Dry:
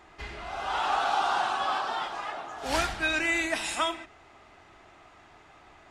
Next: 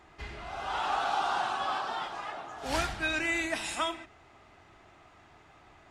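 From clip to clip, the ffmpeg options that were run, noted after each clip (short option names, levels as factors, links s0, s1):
-af "equalizer=f=110:t=o:w=2.1:g=5,volume=0.668"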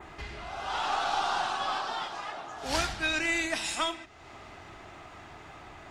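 -af "acompressor=mode=upward:threshold=0.0141:ratio=2.5,adynamicequalizer=threshold=0.00282:dfrequency=5200:dqfactor=0.94:tfrequency=5200:tqfactor=0.94:attack=5:release=100:ratio=0.375:range=3:mode=boostabove:tftype=bell,aeval=exprs='0.168*(cos(1*acos(clip(val(0)/0.168,-1,1)))-cos(1*PI/2))+0.0237*(cos(2*acos(clip(val(0)/0.168,-1,1)))-cos(2*PI/2))':c=same"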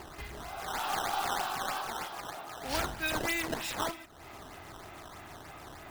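-filter_complex "[0:a]asplit=2[s0][s1];[s1]acompressor=mode=upward:threshold=0.0224:ratio=2.5,volume=0.794[s2];[s0][s2]amix=inputs=2:normalize=0,acrusher=samples=11:mix=1:aa=0.000001:lfo=1:lforange=17.6:lforate=3.2,volume=0.376"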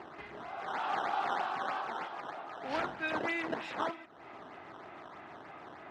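-af "highpass=200,lowpass=2300"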